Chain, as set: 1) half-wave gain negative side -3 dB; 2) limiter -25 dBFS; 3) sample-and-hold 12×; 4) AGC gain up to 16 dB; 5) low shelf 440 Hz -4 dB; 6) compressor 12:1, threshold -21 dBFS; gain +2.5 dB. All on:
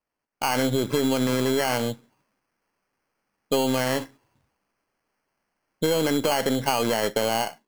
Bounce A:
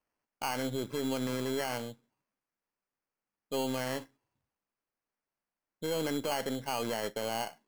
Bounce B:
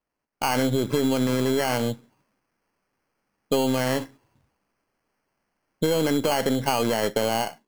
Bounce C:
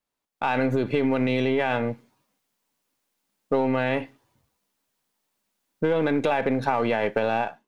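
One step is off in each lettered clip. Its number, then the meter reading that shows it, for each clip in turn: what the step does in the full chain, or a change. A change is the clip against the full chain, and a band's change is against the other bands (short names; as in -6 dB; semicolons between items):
4, loudness change -10.5 LU; 5, 125 Hz band +2.5 dB; 3, distortion -5 dB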